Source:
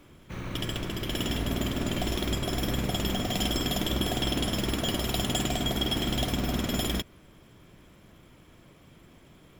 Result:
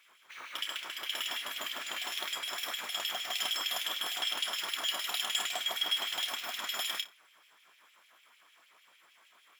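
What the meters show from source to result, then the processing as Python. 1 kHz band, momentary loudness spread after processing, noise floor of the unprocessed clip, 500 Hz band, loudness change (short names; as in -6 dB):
-4.5 dB, 6 LU, -55 dBFS, -15.0 dB, -4.0 dB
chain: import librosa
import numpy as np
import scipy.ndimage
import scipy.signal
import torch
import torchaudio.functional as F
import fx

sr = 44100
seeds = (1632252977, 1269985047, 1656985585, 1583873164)

y = fx.room_flutter(x, sr, wall_m=5.1, rt60_s=0.21)
y = fx.filter_lfo_highpass(y, sr, shape='sine', hz=6.6, low_hz=910.0, high_hz=2700.0, q=1.8)
y = F.gain(torch.from_numpy(y), -3.5).numpy()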